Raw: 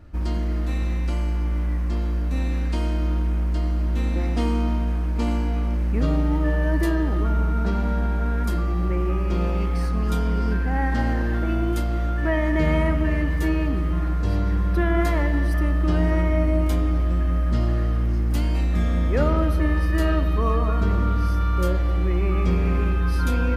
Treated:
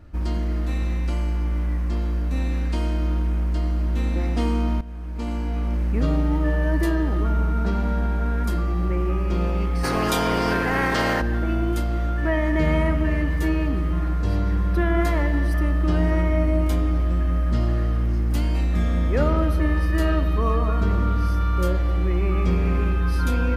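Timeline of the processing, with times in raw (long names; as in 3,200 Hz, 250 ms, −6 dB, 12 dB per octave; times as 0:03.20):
0:04.81–0:05.76: fade in, from −15 dB
0:09.83–0:11.20: ceiling on every frequency bin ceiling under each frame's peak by 26 dB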